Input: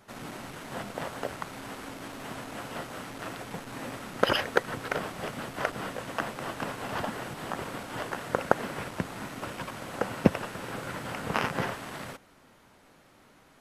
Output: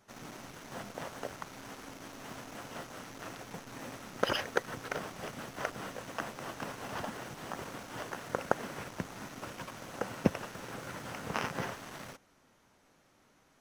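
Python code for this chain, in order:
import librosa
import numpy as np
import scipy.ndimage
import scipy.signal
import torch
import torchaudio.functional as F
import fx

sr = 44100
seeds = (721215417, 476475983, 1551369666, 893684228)

p1 = fx.peak_eq(x, sr, hz=6000.0, db=7.5, octaves=0.33)
p2 = fx.quant_dither(p1, sr, seeds[0], bits=6, dither='none')
p3 = p1 + (p2 * 10.0 ** (-10.5 / 20.0))
y = p3 * 10.0 ** (-8.5 / 20.0)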